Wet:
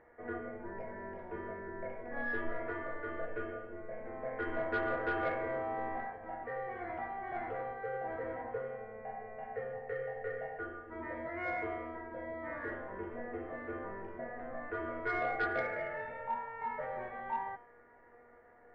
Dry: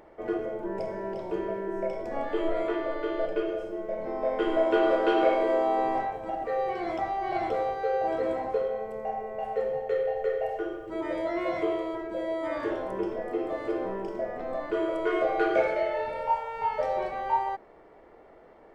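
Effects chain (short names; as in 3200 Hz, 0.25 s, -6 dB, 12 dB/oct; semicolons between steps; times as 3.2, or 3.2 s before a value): octaver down 2 oct, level -5 dB; ladder low-pass 2000 Hz, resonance 65%; resonator 240 Hz, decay 0.49 s, harmonics all, mix 90%; in parallel at -9 dB: sine folder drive 14 dB, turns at -25 dBFS; on the sum: gain +4 dB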